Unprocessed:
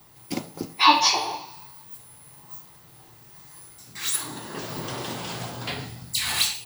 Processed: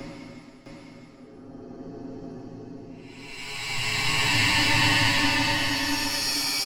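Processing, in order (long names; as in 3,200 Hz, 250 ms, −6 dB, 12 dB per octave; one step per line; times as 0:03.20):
lower of the sound and its delayed copy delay 0.4 ms
low-pass that shuts in the quiet parts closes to 990 Hz, open at −21.5 dBFS
reverb reduction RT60 1.9 s
extreme stretch with random phases 10×, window 0.25 s, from 0:00.41
comb filter 7.4 ms, depth 75%
single-tap delay 659 ms −4 dB
level −6 dB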